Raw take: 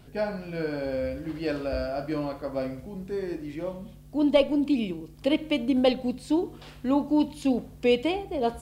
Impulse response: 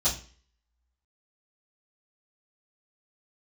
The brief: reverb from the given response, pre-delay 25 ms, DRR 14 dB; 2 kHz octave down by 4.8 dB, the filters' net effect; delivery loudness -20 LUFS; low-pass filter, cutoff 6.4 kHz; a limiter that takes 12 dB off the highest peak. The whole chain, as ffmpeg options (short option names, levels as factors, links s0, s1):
-filter_complex "[0:a]lowpass=6400,equalizer=f=2000:t=o:g=-6.5,alimiter=limit=0.0944:level=0:latency=1,asplit=2[s0][s1];[1:a]atrim=start_sample=2205,adelay=25[s2];[s1][s2]afir=irnorm=-1:irlink=0,volume=0.0708[s3];[s0][s3]amix=inputs=2:normalize=0,volume=3.55"